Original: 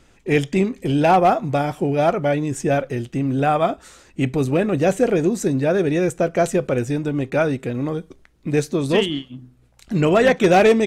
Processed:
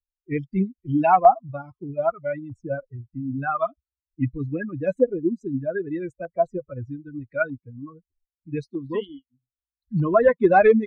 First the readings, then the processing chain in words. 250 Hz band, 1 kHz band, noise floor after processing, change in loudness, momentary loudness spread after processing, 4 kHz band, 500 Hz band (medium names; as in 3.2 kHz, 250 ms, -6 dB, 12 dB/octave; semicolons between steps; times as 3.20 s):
-6.5 dB, -1.5 dB, under -85 dBFS, -4.0 dB, 19 LU, under -20 dB, -4.5 dB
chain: expander on every frequency bin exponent 3; LFO low-pass saw up 0.8 Hz 880–2100 Hz; wow and flutter 26 cents; trim +1.5 dB